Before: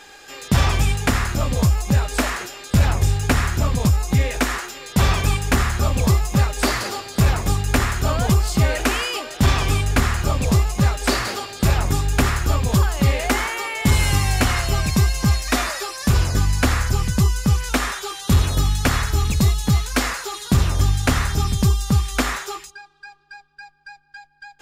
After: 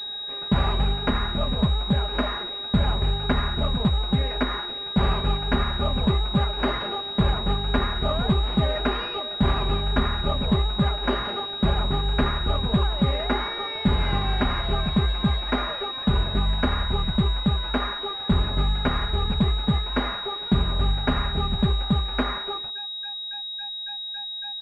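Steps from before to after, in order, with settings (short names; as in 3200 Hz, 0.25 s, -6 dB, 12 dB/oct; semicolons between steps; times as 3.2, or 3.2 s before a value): comb 4.9 ms, depth 57%; pulse-width modulation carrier 3800 Hz; gain -4.5 dB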